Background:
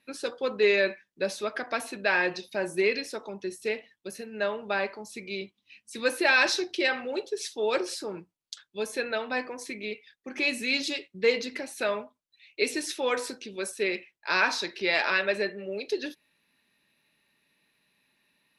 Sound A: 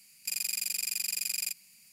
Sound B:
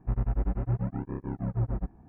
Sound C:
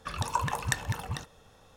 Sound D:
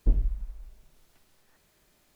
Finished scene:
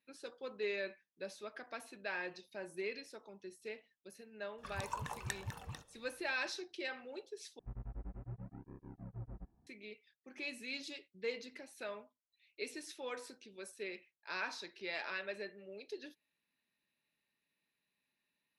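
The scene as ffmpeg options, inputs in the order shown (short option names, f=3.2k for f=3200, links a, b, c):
-filter_complex "[0:a]volume=-16dB,asplit=2[a][b];[a]atrim=end=7.594[c];[2:a]atrim=end=2.08,asetpts=PTS-STARTPTS,volume=-18dB[d];[b]atrim=start=9.666[e];[3:a]atrim=end=1.76,asetpts=PTS-STARTPTS,volume=-12dB,afade=t=in:d=0.004:c=hsin,afade=t=out:st=1.756:d=0.004:c=hsin,adelay=4580[f];[c][d]acrossfade=d=0.004:c1=hsin:c2=hsin[g];[g][e]acrossfade=d=0.004:c1=hsin:c2=hsin[h];[h][f]amix=inputs=2:normalize=0"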